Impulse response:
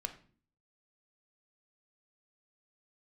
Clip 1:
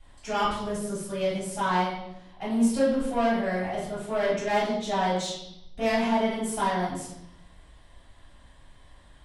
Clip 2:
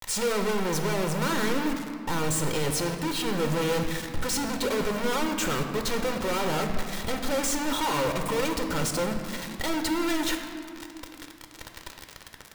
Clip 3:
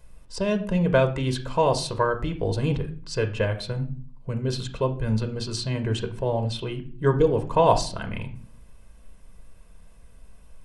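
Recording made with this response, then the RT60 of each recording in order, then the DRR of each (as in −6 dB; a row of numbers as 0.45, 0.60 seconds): 3; 0.80, 2.4, 0.45 seconds; −12.0, 4.5, 6.5 decibels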